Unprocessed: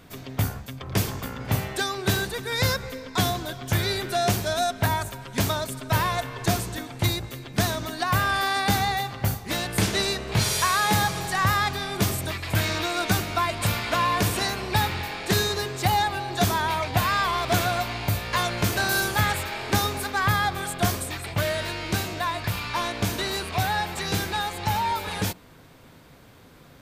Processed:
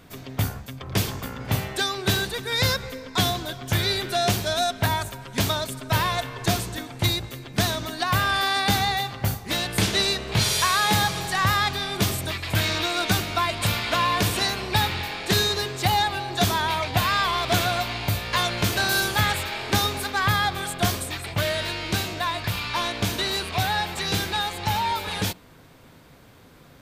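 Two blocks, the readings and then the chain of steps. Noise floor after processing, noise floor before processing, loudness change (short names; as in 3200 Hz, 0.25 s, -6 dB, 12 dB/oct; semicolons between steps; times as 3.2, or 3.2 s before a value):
-50 dBFS, -50 dBFS, +1.5 dB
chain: dynamic EQ 3500 Hz, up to +5 dB, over -40 dBFS, Q 1.3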